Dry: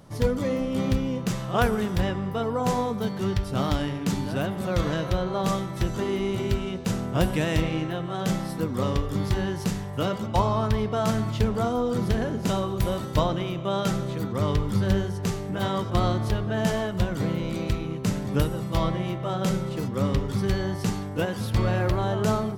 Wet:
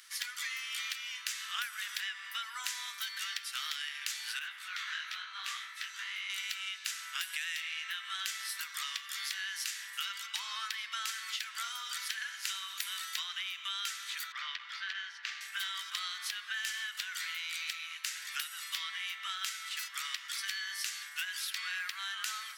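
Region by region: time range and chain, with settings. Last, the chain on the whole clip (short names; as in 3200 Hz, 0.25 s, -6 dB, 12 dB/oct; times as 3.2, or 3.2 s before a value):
4.39–6.3 HPF 600 Hz + high shelf 4500 Hz -12 dB + detuned doubles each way 57 cents
14.32–15.41 air absorption 230 m + core saturation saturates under 170 Hz
whole clip: steep high-pass 1600 Hz 36 dB/oct; compressor, threshold -43 dBFS; gain +8.5 dB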